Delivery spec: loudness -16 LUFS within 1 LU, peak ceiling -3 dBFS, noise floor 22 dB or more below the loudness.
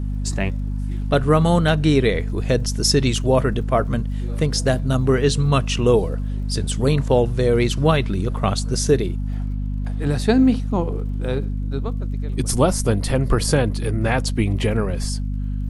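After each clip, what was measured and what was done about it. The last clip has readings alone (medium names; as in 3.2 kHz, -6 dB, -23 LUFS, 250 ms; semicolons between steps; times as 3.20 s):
tick rate 42 per s; hum 50 Hz; highest harmonic 250 Hz; hum level -21 dBFS; loudness -20.5 LUFS; peak level -3.0 dBFS; loudness target -16.0 LUFS
-> de-click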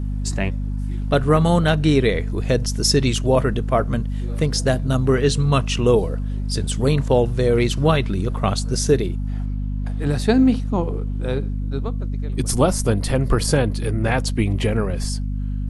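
tick rate 0.13 per s; hum 50 Hz; highest harmonic 250 Hz; hum level -21 dBFS
-> hum notches 50/100/150/200/250 Hz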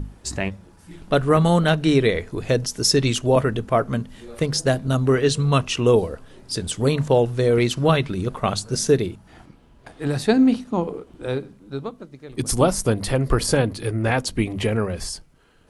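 hum not found; loudness -21.0 LUFS; peak level -4.0 dBFS; loudness target -16.0 LUFS
-> trim +5 dB; peak limiter -3 dBFS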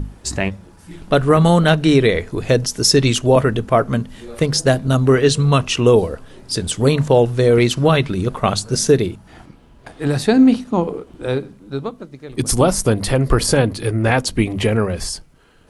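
loudness -16.5 LUFS; peak level -3.0 dBFS; noise floor -47 dBFS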